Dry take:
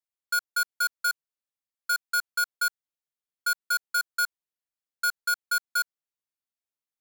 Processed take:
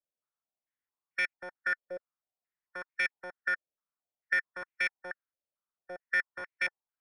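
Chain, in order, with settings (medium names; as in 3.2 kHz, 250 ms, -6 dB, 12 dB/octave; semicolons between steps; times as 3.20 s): reverse the whole clip; formant shift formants +4 st; step-sequenced low-pass 4.5 Hz 580–2300 Hz; trim -3.5 dB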